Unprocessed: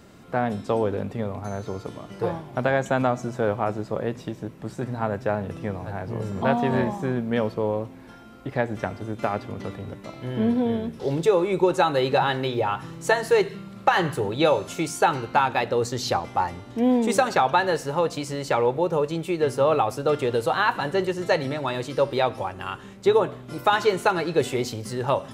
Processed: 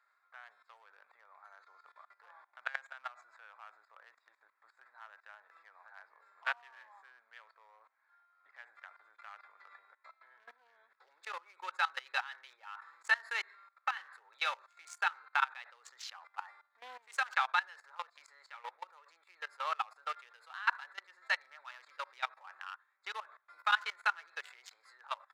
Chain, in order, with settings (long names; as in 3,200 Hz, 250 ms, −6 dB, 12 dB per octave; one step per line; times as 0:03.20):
adaptive Wiener filter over 15 samples
high-shelf EQ 11,000 Hz −3 dB
output level in coarse steps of 20 dB
high-pass filter 1,400 Hz 24 dB per octave
high-shelf EQ 2,600 Hz −10.5 dB
level +4.5 dB